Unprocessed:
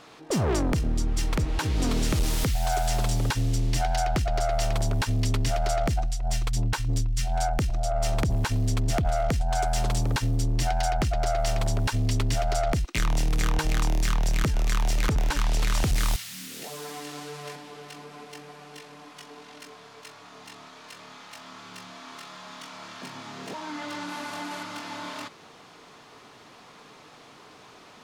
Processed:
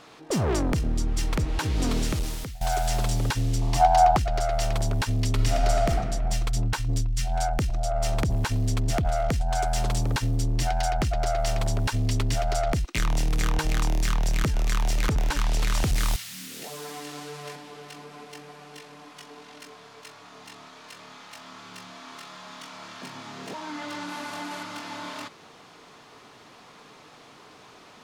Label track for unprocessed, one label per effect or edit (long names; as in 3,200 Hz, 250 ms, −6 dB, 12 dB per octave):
1.960000	2.610000	fade out linear, to −19 dB
3.610000	4.170000	flat-topped bell 890 Hz +12 dB 1 octave
5.340000	5.890000	thrown reverb, RT60 1.9 s, DRR 2 dB